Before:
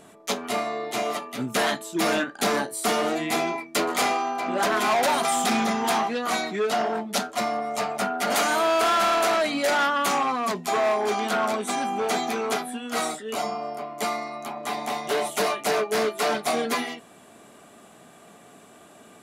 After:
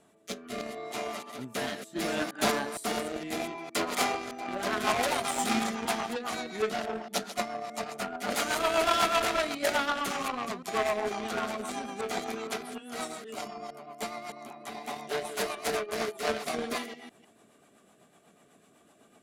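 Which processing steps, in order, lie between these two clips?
reverse delay 0.154 s, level -6 dB; added harmonics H 3 -13 dB, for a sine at -12 dBFS; rotary speaker horn 0.7 Hz, later 8 Hz, at 4.09

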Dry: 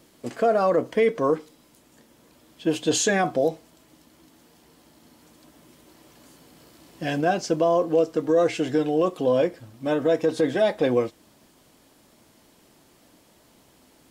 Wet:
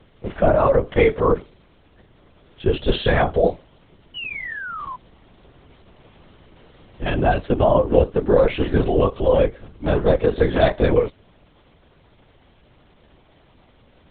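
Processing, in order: painted sound fall, 4.15–4.96, 980–3000 Hz -35 dBFS; LPC vocoder at 8 kHz whisper; gain +4.5 dB

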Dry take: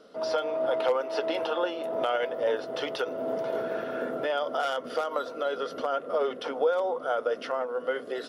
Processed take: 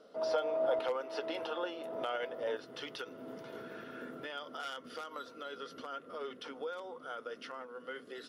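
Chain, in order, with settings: bell 640 Hz +3.5 dB 1.2 oct, from 0.79 s -3.5 dB, from 2.57 s -13.5 dB; gain -7 dB

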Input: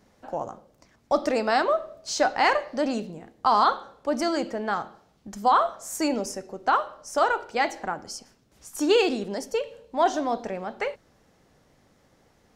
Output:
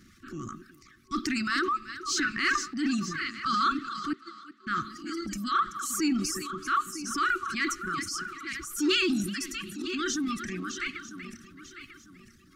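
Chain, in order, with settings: regenerating reverse delay 0.474 s, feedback 52%, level -10.5 dB; 4.13–4.67 gate -19 dBFS, range -38 dB; on a send: thinning echo 0.379 s, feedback 31%, high-pass 200 Hz, level -14 dB; on the sum: reverb removal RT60 1.7 s; FFT band-reject 380–1100 Hz; in parallel at -1 dB: compressor, threshold -37 dBFS, peak gain reduction 16 dB; on the sum: soft clip -13 dBFS, distortion -26 dB; transient shaper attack -5 dB, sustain +7 dB

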